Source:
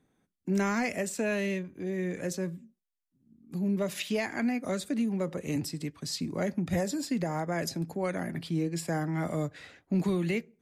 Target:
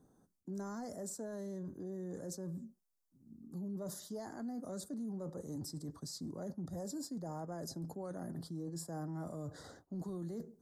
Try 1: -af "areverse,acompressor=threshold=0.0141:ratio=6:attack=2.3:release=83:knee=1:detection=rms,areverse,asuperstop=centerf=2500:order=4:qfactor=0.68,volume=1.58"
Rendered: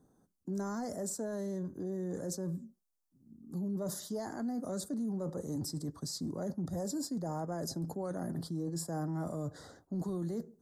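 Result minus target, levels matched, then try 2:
compression: peak gain reduction -6 dB
-af "areverse,acompressor=threshold=0.00631:ratio=6:attack=2.3:release=83:knee=1:detection=rms,areverse,asuperstop=centerf=2500:order=4:qfactor=0.68,volume=1.58"

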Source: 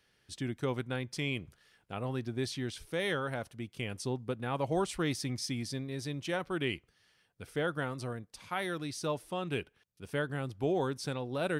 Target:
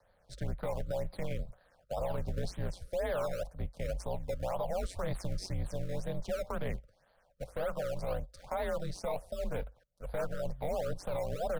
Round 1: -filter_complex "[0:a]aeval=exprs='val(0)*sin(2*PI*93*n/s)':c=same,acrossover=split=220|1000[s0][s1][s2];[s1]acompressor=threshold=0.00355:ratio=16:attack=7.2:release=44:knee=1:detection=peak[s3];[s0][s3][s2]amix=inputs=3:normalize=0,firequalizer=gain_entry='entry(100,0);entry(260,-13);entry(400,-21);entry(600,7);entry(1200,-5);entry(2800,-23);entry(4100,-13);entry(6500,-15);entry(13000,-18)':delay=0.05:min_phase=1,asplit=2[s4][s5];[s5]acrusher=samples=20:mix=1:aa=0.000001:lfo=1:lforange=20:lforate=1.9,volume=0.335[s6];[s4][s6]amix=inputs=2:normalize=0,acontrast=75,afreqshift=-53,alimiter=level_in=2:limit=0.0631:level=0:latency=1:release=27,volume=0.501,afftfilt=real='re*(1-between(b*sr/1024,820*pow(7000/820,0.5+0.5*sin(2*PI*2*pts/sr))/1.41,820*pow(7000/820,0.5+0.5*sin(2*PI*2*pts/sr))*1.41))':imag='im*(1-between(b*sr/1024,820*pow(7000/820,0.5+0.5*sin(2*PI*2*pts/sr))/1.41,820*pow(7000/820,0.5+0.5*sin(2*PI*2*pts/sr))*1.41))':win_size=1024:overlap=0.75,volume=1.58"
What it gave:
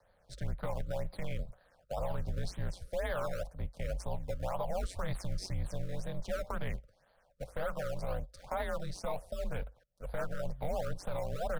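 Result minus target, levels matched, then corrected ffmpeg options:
compression: peak gain reduction +10.5 dB
-filter_complex "[0:a]aeval=exprs='val(0)*sin(2*PI*93*n/s)':c=same,acrossover=split=220|1000[s0][s1][s2];[s1]acompressor=threshold=0.0126:ratio=16:attack=7.2:release=44:knee=1:detection=peak[s3];[s0][s3][s2]amix=inputs=3:normalize=0,firequalizer=gain_entry='entry(100,0);entry(260,-13);entry(400,-21);entry(600,7);entry(1200,-5);entry(2800,-23);entry(4100,-13);entry(6500,-15);entry(13000,-18)':delay=0.05:min_phase=1,asplit=2[s4][s5];[s5]acrusher=samples=20:mix=1:aa=0.000001:lfo=1:lforange=20:lforate=1.9,volume=0.335[s6];[s4][s6]amix=inputs=2:normalize=0,acontrast=75,afreqshift=-53,alimiter=level_in=2:limit=0.0631:level=0:latency=1:release=27,volume=0.501,afftfilt=real='re*(1-between(b*sr/1024,820*pow(7000/820,0.5+0.5*sin(2*PI*2*pts/sr))/1.41,820*pow(7000/820,0.5+0.5*sin(2*PI*2*pts/sr))*1.41))':imag='im*(1-between(b*sr/1024,820*pow(7000/820,0.5+0.5*sin(2*PI*2*pts/sr))/1.41,820*pow(7000/820,0.5+0.5*sin(2*PI*2*pts/sr))*1.41))':win_size=1024:overlap=0.75,volume=1.58"

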